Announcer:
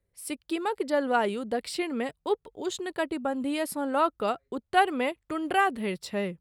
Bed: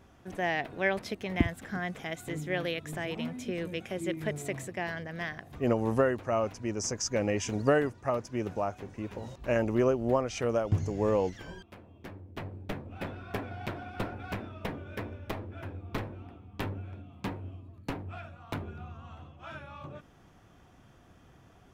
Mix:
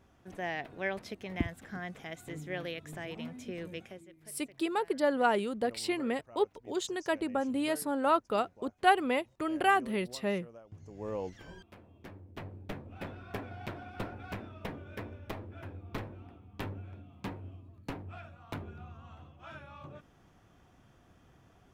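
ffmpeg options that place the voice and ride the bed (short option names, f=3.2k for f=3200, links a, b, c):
-filter_complex "[0:a]adelay=4100,volume=-2dB[a];[1:a]volume=13.5dB,afade=t=out:st=3.78:d=0.28:silence=0.133352,afade=t=in:st=10.76:d=0.88:silence=0.105925[b];[a][b]amix=inputs=2:normalize=0"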